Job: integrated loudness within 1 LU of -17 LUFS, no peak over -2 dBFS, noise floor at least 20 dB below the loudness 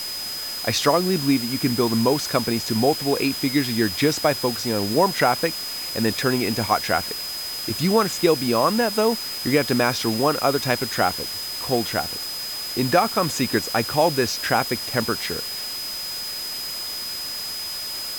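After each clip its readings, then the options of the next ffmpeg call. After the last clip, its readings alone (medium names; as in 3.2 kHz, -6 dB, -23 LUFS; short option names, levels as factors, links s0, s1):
steady tone 5 kHz; tone level -29 dBFS; noise floor -30 dBFS; noise floor target -42 dBFS; loudness -22.0 LUFS; peak level -4.5 dBFS; loudness target -17.0 LUFS
-> -af "bandreject=f=5000:w=30"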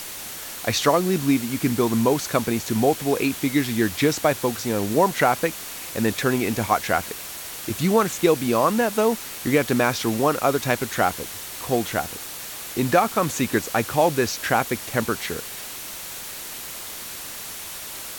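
steady tone not found; noise floor -35 dBFS; noise floor target -43 dBFS
-> -af "afftdn=nr=8:nf=-35"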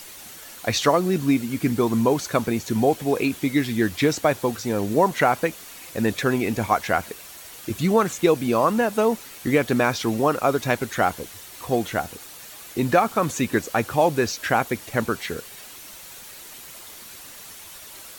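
noise floor -42 dBFS; noise floor target -43 dBFS
-> -af "afftdn=nr=6:nf=-42"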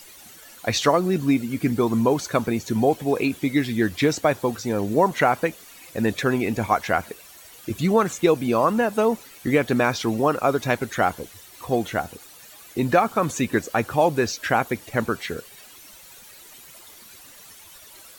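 noise floor -47 dBFS; loudness -22.5 LUFS; peak level -5.5 dBFS; loudness target -17.0 LUFS
-> -af "volume=1.88,alimiter=limit=0.794:level=0:latency=1"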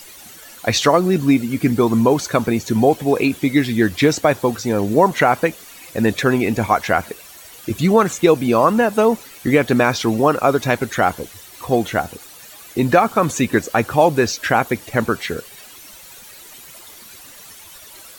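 loudness -17.5 LUFS; peak level -2.0 dBFS; noise floor -41 dBFS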